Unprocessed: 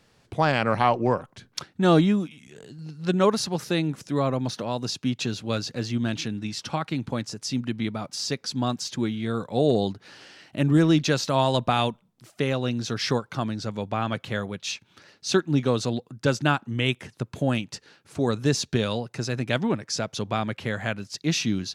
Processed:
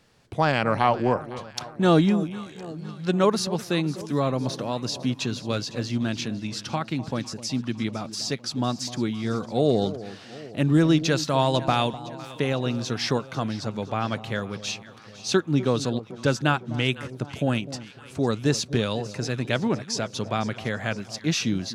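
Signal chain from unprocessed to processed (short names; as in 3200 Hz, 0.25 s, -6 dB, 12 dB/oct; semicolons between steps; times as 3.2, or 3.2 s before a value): echo with dull and thin repeats by turns 0.253 s, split 970 Hz, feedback 73%, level -14 dB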